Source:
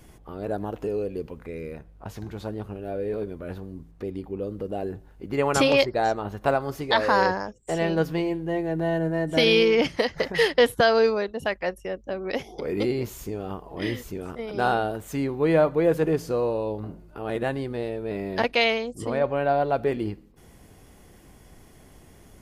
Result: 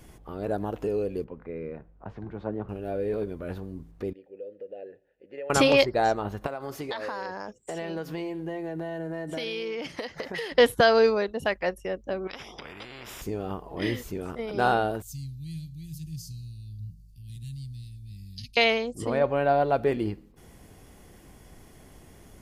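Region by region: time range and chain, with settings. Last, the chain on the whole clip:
1.24–2.69 s: low-pass 1.7 kHz + peaking EQ 75 Hz -7 dB 1.1 oct + three bands expanded up and down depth 40%
4.13–5.50 s: vowel filter e + compression 2.5:1, threshold -35 dBFS
6.46–10.52 s: high-pass 210 Hz 6 dB/octave + compression 10:1, threshold -29 dBFS
12.27–13.22 s: compression 5:1, threshold -31 dBFS + Savitzky-Golay filter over 25 samples + spectrum-flattening compressor 4:1
15.02–18.57 s: elliptic band-stop 130–4800 Hz, stop band 60 dB + peaking EQ 2.5 kHz +4 dB 0.84 oct
whole clip: none

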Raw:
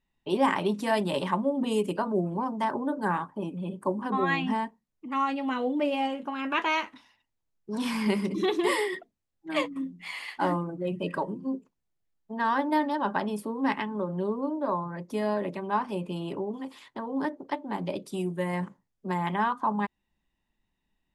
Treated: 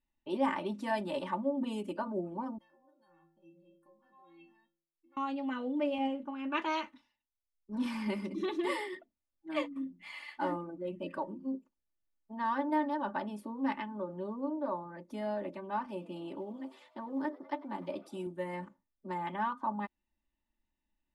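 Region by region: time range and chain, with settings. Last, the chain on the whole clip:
2.58–5.17 s: compression 10:1, threshold -33 dBFS + inharmonic resonator 160 Hz, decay 0.78 s, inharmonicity 0.03
5.98–7.86 s: bass shelf 280 Hz +6.5 dB + band-stop 690 Hz, Q 18 + three bands expanded up and down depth 70%
15.86–18.27 s: high-pass 86 Hz + frequency-shifting echo 100 ms, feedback 61%, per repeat +120 Hz, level -20.5 dB + short-mantissa float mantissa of 6-bit
whole clip: treble shelf 5.6 kHz -8.5 dB; comb 3.4 ms, depth 65%; trim -9 dB

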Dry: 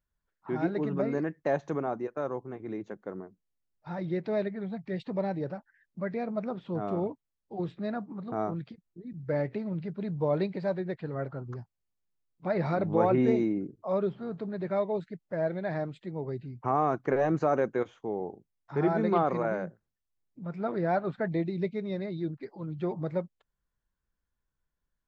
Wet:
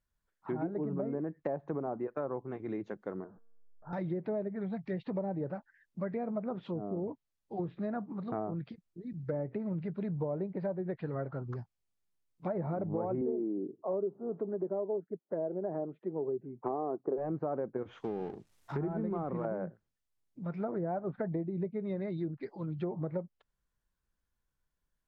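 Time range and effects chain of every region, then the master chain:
3.24–3.93 s: jump at every zero crossing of -47.5 dBFS + steep low-pass 1.6 kHz 96 dB/octave + feedback comb 230 Hz, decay 1.3 s, mix 50%
6.63–7.08 s: high-pass 170 Hz 6 dB/octave + low-pass that closes with the level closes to 450 Hz, closed at -30 dBFS + treble shelf 3.8 kHz +8.5 dB
13.21–17.18 s: Butterworth band-pass 480 Hz, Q 0.53 + peaking EQ 390 Hz +8 dB 0.47 oct
17.76–19.45 s: companding laws mixed up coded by mu + dynamic bell 650 Hz, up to -7 dB, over -37 dBFS, Q 0.7
whole clip: low-pass that closes with the level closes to 880 Hz, closed at -27 dBFS; compression 6:1, threshold -31 dBFS

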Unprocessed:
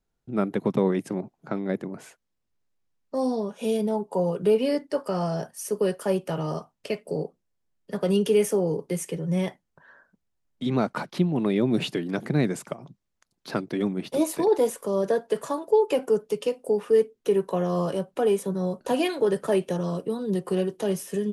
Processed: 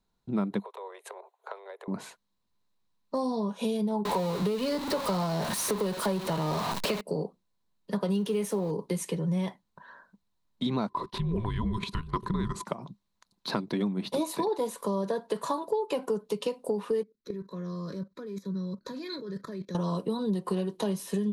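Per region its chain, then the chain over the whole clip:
0.60–1.88 s: peaking EQ 5.1 kHz -12.5 dB 0.47 oct + compression 8:1, threshold -34 dBFS + steep high-pass 420 Hz 72 dB/octave
4.05–7.01 s: jump at every zero crossing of -27 dBFS + three bands compressed up and down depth 40%
8.11–8.71 s: companding laws mixed up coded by mu + band-stop 4.6 kHz, Q 27
10.89–12.66 s: frequency shift -330 Hz + level held to a coarse grid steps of 14 dB + small resonant body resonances 390/1000 Hz, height 18 dB, ringing for 50 ms
17.03–19.75 s: dynamic bell 1.1 kHz, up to -4 dB, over -37 dBFS, Q 1.2 + level held to a coarse grid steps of 18 dB + static phaser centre 2.9 kHz, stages 6
whole clip: graphic EQ with 31 bands 200 Hz +8 dB, 1 kHz +11 dB, 4 kHz +11 dB; compression, threshold -26 dBFS

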